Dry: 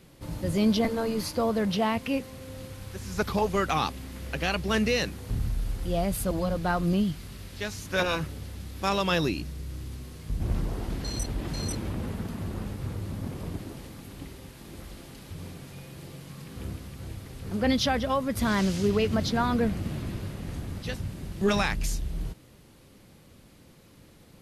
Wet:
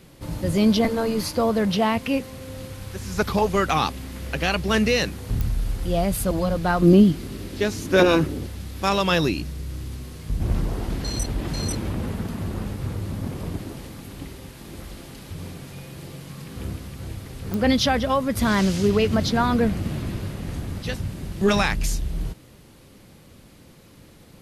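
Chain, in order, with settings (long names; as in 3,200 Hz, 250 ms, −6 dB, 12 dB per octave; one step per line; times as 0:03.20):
0:06.82–0:08.47: parametric band 320 Hz +13 dB 1.3 octaves
digital clicks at 0:05.41/0:17.54, −18 dBFS
level +5 dB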